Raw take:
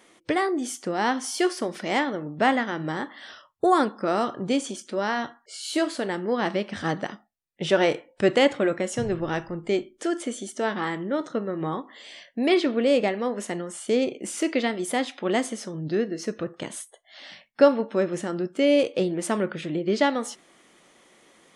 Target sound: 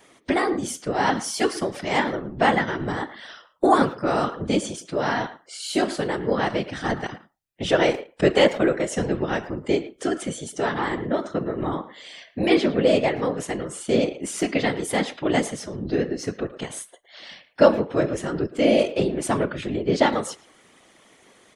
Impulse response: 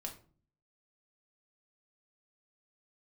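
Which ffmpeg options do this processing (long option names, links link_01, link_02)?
-filter_complex "[0:a]asplit=2[link_01][link_02];[link_02]adelay=110,highpass=300,lowpass=3400,asoftclip=type=hard:threshold=-15dB,volume=-15dB[link_03];[link_01][link_03]amix=inputs=2:normalize=0,afftfilt=real='hypot(re,im)*cos(2*PI*random(0))':imag='hypot(re,im)*sin(2*PI*random(1))':win_size=512:overlap=0.75,volume=8dB"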